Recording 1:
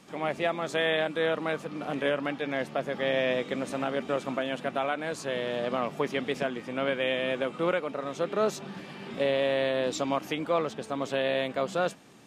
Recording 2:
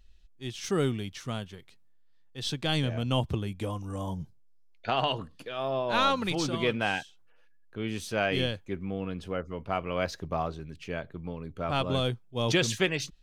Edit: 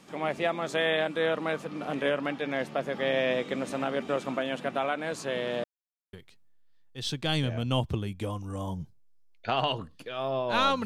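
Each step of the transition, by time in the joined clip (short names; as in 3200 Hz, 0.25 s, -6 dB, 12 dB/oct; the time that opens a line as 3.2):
recording 1
5.64–6.13 mute
6.13 switch to recording 2 from 1.53 s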